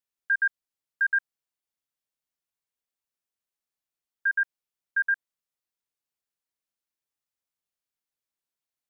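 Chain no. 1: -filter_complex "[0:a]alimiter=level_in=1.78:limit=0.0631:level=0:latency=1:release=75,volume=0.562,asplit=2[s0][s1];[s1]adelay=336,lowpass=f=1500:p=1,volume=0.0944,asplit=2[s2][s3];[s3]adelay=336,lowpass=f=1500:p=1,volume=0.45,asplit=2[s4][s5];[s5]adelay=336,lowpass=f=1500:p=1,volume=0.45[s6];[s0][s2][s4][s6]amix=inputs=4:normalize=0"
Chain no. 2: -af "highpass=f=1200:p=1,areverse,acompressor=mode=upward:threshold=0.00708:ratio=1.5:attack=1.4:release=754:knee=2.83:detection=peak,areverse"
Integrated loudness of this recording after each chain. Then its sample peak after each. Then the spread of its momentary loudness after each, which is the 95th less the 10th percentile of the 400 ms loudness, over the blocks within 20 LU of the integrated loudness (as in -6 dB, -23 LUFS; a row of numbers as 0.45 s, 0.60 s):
-37.5 LUFS, -29.0 LUFS; -29.0 dBFS, -20.0 dBFS; 4 LU, 5 LU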